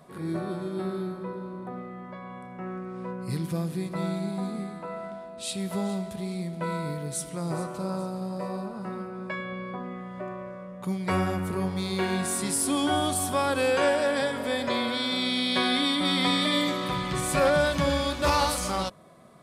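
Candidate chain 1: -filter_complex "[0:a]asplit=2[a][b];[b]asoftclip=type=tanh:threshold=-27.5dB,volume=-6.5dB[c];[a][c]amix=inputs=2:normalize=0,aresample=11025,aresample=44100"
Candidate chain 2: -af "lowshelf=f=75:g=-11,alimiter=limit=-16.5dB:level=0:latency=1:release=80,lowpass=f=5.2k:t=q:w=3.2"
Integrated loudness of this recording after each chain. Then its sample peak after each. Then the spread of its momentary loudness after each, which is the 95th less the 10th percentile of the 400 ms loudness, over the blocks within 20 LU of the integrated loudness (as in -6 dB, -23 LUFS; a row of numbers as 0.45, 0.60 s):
-26.5, -27.5 LUFS; -11.5, -12.5 dBFS; 12, 16 LU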